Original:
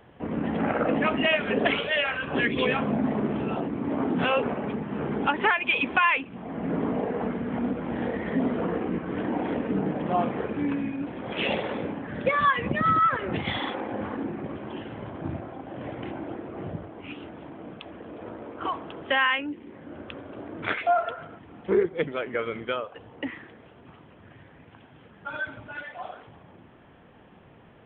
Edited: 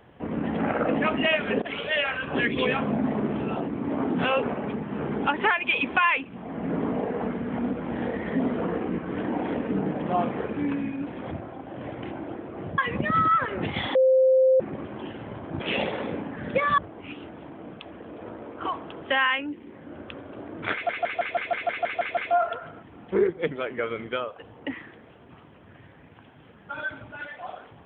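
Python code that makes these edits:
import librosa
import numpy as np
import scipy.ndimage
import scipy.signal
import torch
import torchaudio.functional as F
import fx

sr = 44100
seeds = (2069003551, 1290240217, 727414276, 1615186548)

y = fx.edit(x, sr, fx.fade_in_from(start_s=1.62, length_s=0.28, floor_db=-21.5),
    fx.swap(start_s=11.31, length_s=1.18, other_s=15.31, other_length_s=1.47),
    fx.bleep(start_s=13.66, length_s=0.65, hz=522.0, db=-15.0),
    fx.stutter(start_s=20.73, slice_s=0.16, count=10), tone=tone)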